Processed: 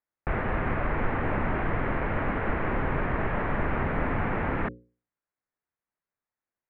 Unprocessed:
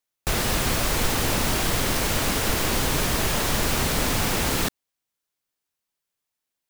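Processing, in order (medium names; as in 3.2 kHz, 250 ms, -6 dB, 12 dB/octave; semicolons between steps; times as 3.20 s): steep low-pass 2.1 kHz 36 dB/octave; hum notches 60/120/180/240/300/360/420/480/540 Hz; trim -2 dB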